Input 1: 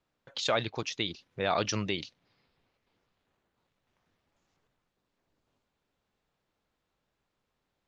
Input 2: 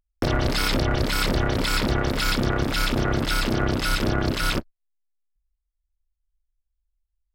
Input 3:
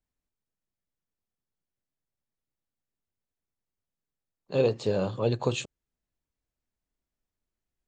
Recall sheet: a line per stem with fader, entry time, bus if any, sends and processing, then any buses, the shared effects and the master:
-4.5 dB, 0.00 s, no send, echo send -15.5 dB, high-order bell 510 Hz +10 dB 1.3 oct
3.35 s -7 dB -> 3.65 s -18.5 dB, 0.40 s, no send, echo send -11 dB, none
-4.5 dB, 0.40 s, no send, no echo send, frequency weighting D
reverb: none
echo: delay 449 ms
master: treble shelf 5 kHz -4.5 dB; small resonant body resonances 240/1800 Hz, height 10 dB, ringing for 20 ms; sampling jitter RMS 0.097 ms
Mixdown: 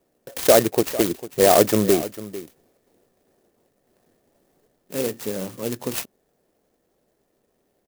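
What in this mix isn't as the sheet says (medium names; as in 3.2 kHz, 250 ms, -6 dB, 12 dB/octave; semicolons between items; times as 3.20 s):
stem 1 -4.5 dB -> +5.0 dB; stem 2: muted; master: missing treble shelf 5 kHz -4.5 dB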